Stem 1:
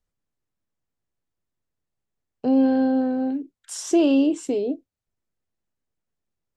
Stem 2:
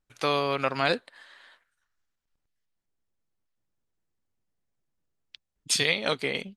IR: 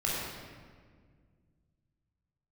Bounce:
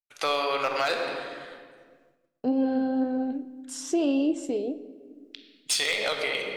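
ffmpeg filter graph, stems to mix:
-filter_complex "[0:a]flanger=delay=1.8:depth=3.9:regen=75:speed=1.9:shape=triangular,volume=0.944,asplit=2[s0][s1];[s1]volume=0.0891[s2];[1:a]highpass=450,asoftclip=type=hard:threshold=0.133,volume=1.33,asplit=2[s3][s4];[s4]volume=0.335[s5];[2:a]atrim=start_sample=2205[s6];[s2][s5]amix=inputs=2:normalize=0[s7];[s7][s6]afir=irnorm=-1:irlink=0[s8];[s0][s3][s8]amix=inputs=3:normalize=0,agate=range=0.0224:threshold=0.00141:ratio=3:detection=peak,alimiter=limit=0.15:level=0:latency=1:release=173"

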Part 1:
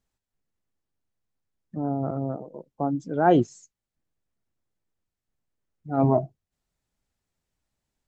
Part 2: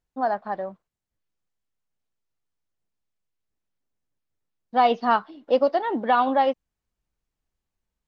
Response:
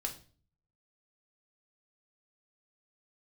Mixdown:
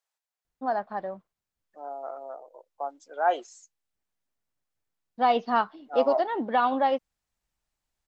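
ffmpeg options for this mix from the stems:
-filter_complex "[0:a]highpass=f=610:w=0.5412,highpass=f=610:w=1.3066,volume=0.841[s0];[1:a]adelay=450,volume=0.668[s1];[s0][s1]amix=inputs=2:normalize=0"

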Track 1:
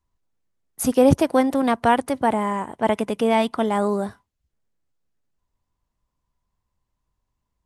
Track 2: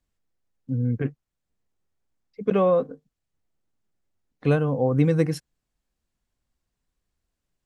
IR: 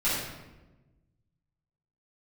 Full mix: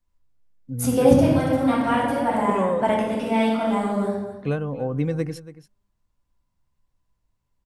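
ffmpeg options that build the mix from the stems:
-filter_complex "[0:a]volume=0.473,asplit=3[s0][s1][s2];[s1]volume=0.473[s3];[s2]volume=0.282[s4];[1:a]volume=0.596,asplit=3[s5][s6][s7];[s6]volume=0.158[s8];[s7]apad=whole_len=337556[s9];[s0][s9]sidechaingate=range=0.0224:threshold=0.00631:ratio=16:detection=peak[s10];[2:a]atrim=start_sample=2205[s11];[s3][s11]afir=irnorm=-1:irlink=0[s12];[s4][s8]amix=inputs=2:normalize=0,aecho=0:1:282:1[s13];[s10][s5][s12][s13]amix=inputs=4:normalize=0"

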